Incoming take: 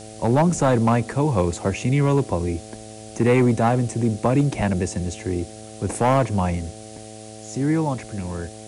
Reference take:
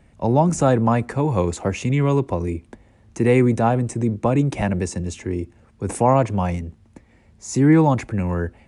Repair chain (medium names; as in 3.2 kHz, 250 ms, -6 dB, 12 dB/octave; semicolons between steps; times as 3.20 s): clip repair -11 dBFS; de-hum 108.6 Hz, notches 7; noise print and reduce 14 dB; trim 0 dB, from 7.09 s +7 dB